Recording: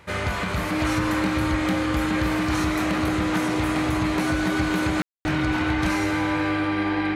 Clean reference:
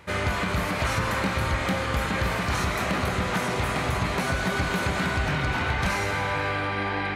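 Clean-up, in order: notch 310 Hz, Q 30; room tone fill 5.02–5.25

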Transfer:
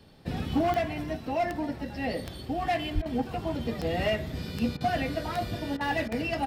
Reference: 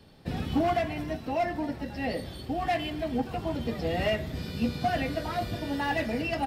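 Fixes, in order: de-click; 2.94–3.06 HPF 140 Hz 24 dB/oct; interpolate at 3.02/4.77/5.77/6.08, 35 ms

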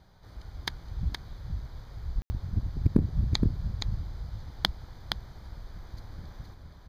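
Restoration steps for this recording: room tone fill 2.22–2.3; inverse comb 0.469 s -5.5 dB

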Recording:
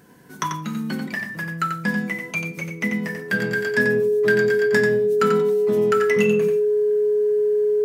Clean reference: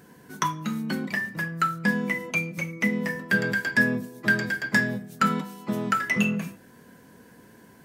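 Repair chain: clip repair -9.5 dBFS; notch 420 Hz, Q 30; inverse comb 90 ms -6 dB

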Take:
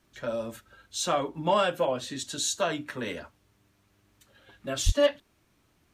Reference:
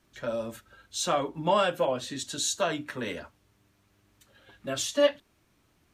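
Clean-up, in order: clip repair -14 dBFS; de-plosive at 4.85

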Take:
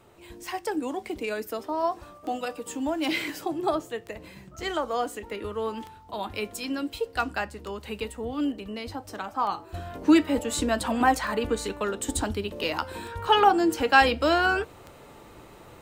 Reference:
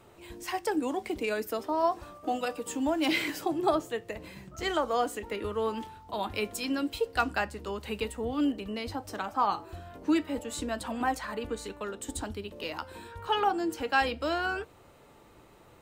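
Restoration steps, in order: de-click; gain correction -8 dB, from 9.74

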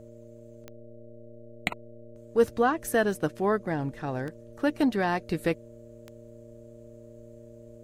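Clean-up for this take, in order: de-click; de-hum 115.9 Hz, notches 5; notch 610 Hz, Q 30

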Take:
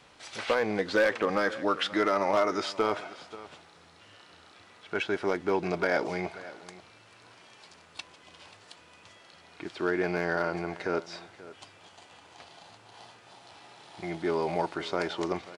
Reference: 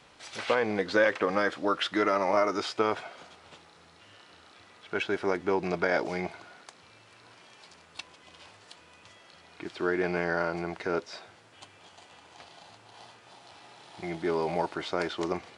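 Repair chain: clip repair -16.5 dBFS; inverse comb 0.534 s -17.5 dB

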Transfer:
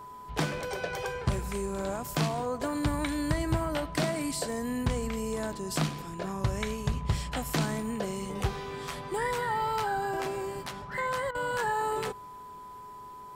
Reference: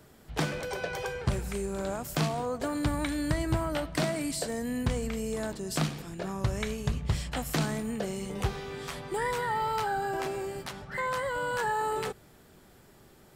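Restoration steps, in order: de-hum 418.7 Hz, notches 3; notch 1000 Hz, Q 30; interpolate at 11.31, 37 ms

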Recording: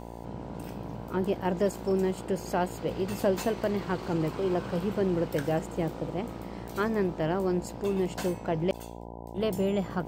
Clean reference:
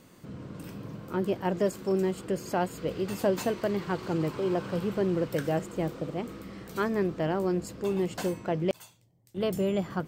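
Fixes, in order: de-hum 58 Hz, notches 17

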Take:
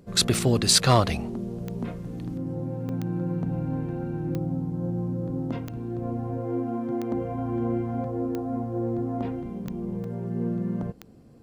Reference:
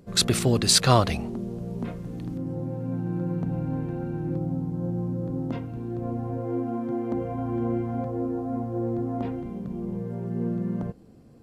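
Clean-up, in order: clip repair -7.5 dBFS; de-click; interpolate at 2.89/5.68/10.04, 2.8 ms

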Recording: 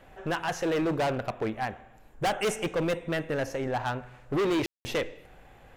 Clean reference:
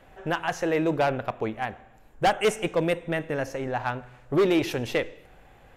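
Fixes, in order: clip repair -23.5 dBFS; room tone fill 4.66–4.85

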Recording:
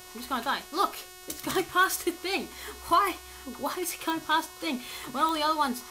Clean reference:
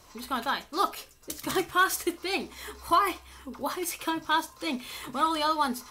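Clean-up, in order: de-click; de-hum 366.4 Hz, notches 39

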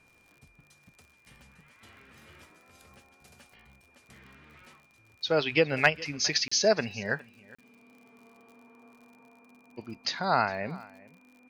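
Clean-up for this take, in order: de-click; notch 2400 Hz, Q 30; interpolate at 6.48/7.55, 35 ms; inverse comb 0.41 s -21.5 dB

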